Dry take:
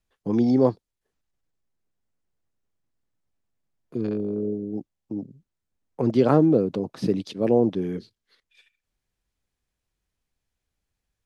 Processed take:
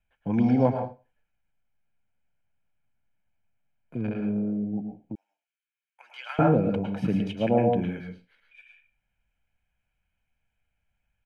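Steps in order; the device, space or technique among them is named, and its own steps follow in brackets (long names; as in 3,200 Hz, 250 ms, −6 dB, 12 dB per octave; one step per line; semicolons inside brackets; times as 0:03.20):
microphone above a desk (comb filter 1.3 ms, depth 65%; convolution reverb RT60 0.30 s, pre-delay 102 ms, DRR 2 dB)
0:05.15–0:06.39: Bessel high-pass filter 2,100 Hz, order 4
high shelf with overshoot 3,400 Hz −9 dB, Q 3
level −2 dB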